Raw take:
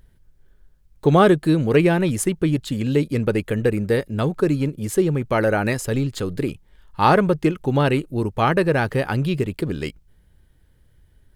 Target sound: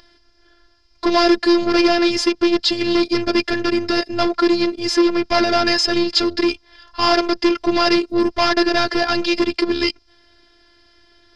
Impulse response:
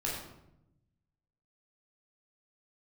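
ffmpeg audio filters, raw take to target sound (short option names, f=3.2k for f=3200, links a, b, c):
-filter_complex "[0:a]asplit=2[a][b];[b]highpass=f=720:p=1,volume=29dB,asoftclip=type=tanh:threshold=-3dB[c];[a][c]amix=inputs=2:normalize=0,lowpass=f=2.1k:p=1,volume=-6dB,afftfilt=real='hypot(re,im)*cos(PI*b)':imag='0':win_size=512:overlap=0.75,lowpass=f=5k:t=q:w=13,volume=-1.5dB"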